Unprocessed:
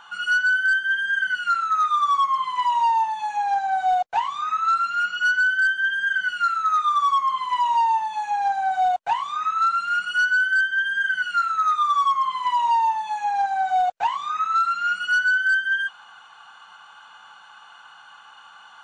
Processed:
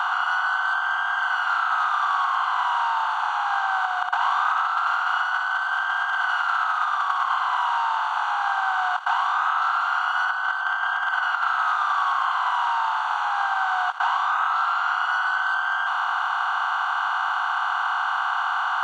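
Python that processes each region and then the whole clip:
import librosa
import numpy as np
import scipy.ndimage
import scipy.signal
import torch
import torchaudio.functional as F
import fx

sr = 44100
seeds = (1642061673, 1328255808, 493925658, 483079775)

y = fx.chain(x, sr, fx.sample_gate(floor_db=-50.5),
    fx.over_compress(threshold_db=-26.0, ratio=-1.0),
    fx.room_flutter(wall_m=10.5, rt60_s=0.24), at=(3.85, 7.34))
y = fx.chain(y, sr, fx.over_compress(threshold_db=-25.0, ratio=-0.5),
    fx.bass_treble(bass_db=15, treble_db=-13), at=(10.29, 11.47))
y = fx.bin_compress(y, sr, power=0.2)
y = scipy.signal.sosfilt(scipy.signal.butter(2, 710.0, 'highpass', fs=sr, output='sos'), y)
y = fx.high_shelf(y, sr, hz=4000.0, db=-11.5)
y = y * 10.0 ** (-8.0 / 20.0)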